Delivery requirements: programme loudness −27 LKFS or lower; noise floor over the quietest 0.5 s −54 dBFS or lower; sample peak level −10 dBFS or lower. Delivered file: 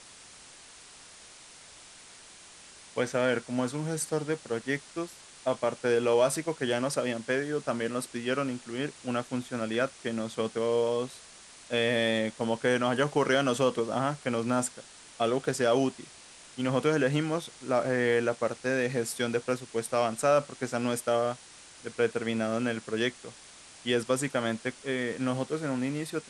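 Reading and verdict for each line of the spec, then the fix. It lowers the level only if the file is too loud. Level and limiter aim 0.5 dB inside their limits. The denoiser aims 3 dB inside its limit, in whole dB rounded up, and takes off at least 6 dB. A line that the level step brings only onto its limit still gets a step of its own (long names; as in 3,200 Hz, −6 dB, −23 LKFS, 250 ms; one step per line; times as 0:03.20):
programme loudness −29.5 LKFS: in spec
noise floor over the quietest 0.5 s −51 dBFS: out of spec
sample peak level −12.5 dBFS: in spec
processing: broadband denoise 6 dB, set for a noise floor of −51 dBFS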